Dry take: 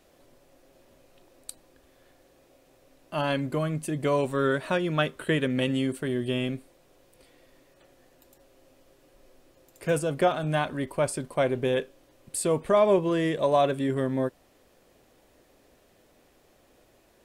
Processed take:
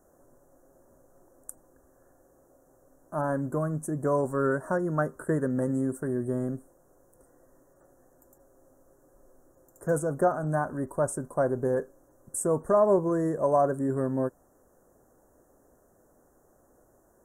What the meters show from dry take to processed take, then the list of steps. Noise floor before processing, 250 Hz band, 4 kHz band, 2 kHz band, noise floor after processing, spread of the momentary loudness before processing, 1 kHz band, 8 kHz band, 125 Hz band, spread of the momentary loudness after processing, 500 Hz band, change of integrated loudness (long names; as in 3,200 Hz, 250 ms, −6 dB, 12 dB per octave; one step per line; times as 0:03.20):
−62 dBFS, −1.0 dB, below −30 dB, −6.0 dB, −63 dBFS, 11 LU, −1.0 dB, −1.0 dB, −1.0 dB, 11 LU, −1.0 dB, −1.5 dB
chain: inverse Chebyshev band-stop filter 2,200–4,600 Hz, stop band 40 dB
level −1 dB